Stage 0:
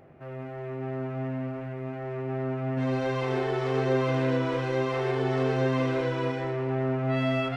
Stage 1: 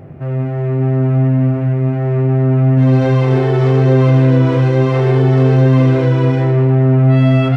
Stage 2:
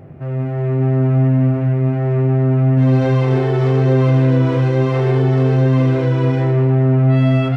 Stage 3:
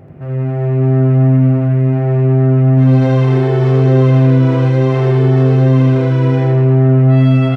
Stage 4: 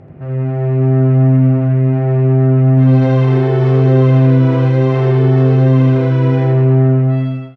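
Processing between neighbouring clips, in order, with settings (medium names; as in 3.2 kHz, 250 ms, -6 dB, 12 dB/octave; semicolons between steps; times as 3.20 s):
peaking EQ 110 Hz +14.5 dB 2.8 oct; in parallel at +2.5 dB: peak limiter -16.5 dBFS, peak gain reduction 9.5 dB; on the sum: trim +2 dB
level rider gain up to 3.5 dB; trim -3.5 dB
delay 84 ms -4 dB
fade out at the end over 0.76 s; distance through air 60 m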